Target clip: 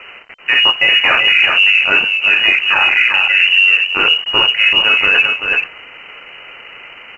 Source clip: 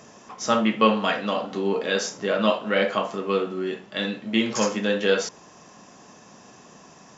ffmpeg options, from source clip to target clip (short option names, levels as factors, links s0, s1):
-filter_complex "[0:a]aemphasis=mode=production:type=75fm,bandreject=f=50:t=h:w=6,bandreject=f=100:t=h:w=6,bandreject=f=150:t=h:w=6,bandreject=f=200:t=h:w=6,bandreject=f=250:t=h:w=6,bandreject=f=300:t=h:w=6,bandreject=f=350:t=h:w=6,bandreject=f=400:t=h:w=6,afwtdn=0.0501,areverse,acompressor=threshold=0.0158:ratio=16,areverse,acrusher=bits=9:mix=0:aa=0.000001,asplit=2[s0][s1];[s1]aecho=0:1:384:0.447[s2];[s0][s2]amix=inputs=2:normalize=0,lowpass=f=2600:t=q:w=0.5098,lowpass=f=2600:t=q:w=0.6013,lowpass=f=2600:t=q:w=0.9,lowpass=f=2600:t=q:w=2.563,afreqshift=-3100,alimiter=level_in=37.6:limit=0.891:release=50:level=0:latency=1,volume=0.891" -ar 16000 -c:a pcm_alaw